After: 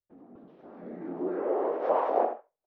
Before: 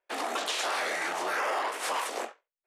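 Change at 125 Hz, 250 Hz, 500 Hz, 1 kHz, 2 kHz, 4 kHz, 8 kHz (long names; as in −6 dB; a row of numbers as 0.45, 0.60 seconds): can't be measured, +8.5 dB, +6.5 dB, −1.0 dB, −18.0 dB, below −25 dB, below −40 dB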